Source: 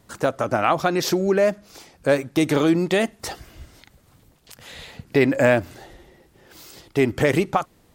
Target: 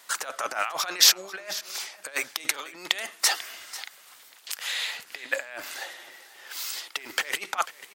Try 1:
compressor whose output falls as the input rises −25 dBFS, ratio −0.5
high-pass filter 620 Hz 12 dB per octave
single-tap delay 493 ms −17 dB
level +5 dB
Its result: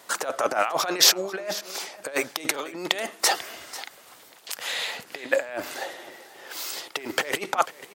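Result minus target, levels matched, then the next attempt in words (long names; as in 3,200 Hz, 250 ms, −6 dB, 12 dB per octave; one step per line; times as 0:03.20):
500 Hz band +9.5 dB
compressor whose output falls as the input rises −25 dBFS, ratio −0.5
high-pass filter 1,300 Hz 12 dB per octave
single-tap delay 493 ms −17 dB
level +5 dB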